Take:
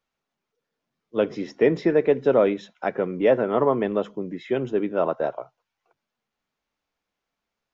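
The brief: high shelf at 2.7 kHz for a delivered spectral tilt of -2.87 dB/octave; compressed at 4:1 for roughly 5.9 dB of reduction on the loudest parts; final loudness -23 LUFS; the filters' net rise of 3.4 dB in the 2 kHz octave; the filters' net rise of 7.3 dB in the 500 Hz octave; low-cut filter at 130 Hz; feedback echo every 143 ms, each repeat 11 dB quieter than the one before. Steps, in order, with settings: high-pass 130 Hz; peaking EQ 500 Hz +8.5 dB; peaking EQ 2 kHz +5 dB; treble shelf 2.7 kHz -3.5 dB; compression 4:1, threshold -13 dBFS; feedback delay 143 ms, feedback 28%, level -11 dB; trim -3 dB

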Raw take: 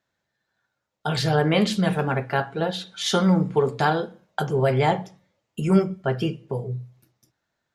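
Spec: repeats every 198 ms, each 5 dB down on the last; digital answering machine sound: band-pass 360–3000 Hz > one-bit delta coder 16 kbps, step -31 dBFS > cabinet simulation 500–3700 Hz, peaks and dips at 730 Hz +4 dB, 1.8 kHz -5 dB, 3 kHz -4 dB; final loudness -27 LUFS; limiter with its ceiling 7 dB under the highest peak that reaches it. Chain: peak limiter -13.5 dBFS; band-pass 360–3000 Hz; feedback delay 198 ms, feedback 56%, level -5 dB; one-bit delta coder 16 kbps, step -31 dBFS; cabinet simulation 500–3700 Hz, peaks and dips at 730 Hz +4 dB, 1.8 kHz -5 dB, 3 kHz -4 dB; trim +4 dB

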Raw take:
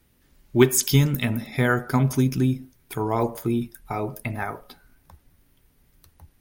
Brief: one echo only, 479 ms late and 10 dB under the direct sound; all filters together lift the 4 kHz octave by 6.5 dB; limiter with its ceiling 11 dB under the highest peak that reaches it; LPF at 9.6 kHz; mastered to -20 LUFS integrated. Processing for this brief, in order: low-pass 9.6 kHz; peaking EQ 4 kHz +8.5 dB; peak limiter -12.5 dBFS; delay 479 ms -10 dB; trim +5 dB

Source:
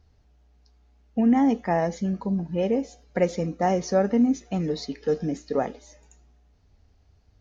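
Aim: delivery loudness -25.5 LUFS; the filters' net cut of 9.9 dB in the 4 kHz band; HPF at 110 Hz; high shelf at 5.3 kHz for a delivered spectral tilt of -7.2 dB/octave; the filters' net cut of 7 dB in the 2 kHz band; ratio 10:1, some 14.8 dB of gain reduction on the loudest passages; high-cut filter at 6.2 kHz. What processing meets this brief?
high-pass 110 Hz; low-pass 6.2 kHz; peaking EQ 2 kHz -6 dB; peaking EQ 4 kHz -6 dB; treble shelf 5.3 kHz -8.5 dB; compression 10:1, threshold -32 dBFS; trim +12 dB

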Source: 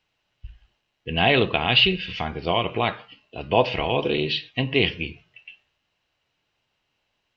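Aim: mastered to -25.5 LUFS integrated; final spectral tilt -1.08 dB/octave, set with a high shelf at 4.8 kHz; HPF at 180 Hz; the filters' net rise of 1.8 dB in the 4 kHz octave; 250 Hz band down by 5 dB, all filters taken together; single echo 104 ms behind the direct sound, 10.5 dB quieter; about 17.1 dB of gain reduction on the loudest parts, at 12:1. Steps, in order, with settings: high-pass 180 Hz; peaking EQ 250 Hz -5.5 dB; peaking EQ 4 kHz +6 dB; treble shelf 4.8 kHz -7 dB; compression 12:1, threshold -29 dBFS; delay 104 ms -10.5 dB; trim +8.5 dB

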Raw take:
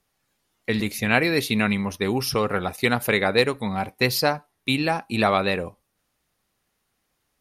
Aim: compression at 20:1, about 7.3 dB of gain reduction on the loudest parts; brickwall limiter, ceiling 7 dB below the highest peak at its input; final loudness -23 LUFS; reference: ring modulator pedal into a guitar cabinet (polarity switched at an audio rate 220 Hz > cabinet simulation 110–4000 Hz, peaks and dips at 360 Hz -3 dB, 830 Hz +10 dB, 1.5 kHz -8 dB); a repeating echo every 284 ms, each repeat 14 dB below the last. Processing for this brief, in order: compression 20:1, threshold -21 dBFS; peak limiter -17 dBFS; feedback delay 284 ms, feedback 20%, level -14 dB; polarity switched at an audio rate 220 Hz; cabinet simulation 110–4000 Hz, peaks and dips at 360 Hz -3 dB, 830 Hz +10 dB, 1.5 kHz -8 dB; trim +6 dB

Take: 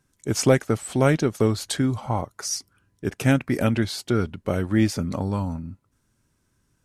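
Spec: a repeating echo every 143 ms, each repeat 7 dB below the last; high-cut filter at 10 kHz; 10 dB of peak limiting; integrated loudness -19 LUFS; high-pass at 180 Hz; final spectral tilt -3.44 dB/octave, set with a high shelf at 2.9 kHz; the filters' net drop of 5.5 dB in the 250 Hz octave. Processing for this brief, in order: high-pass 180 Hz; low-pass 10 kHz; peaking EQ 250 Hz -5.5 dB; treble shelf 2.9 kHz +5 dB; peak limiter -15 dBFS; feedback delay 143 ms, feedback 45%, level -7 dB; trim +9 dB

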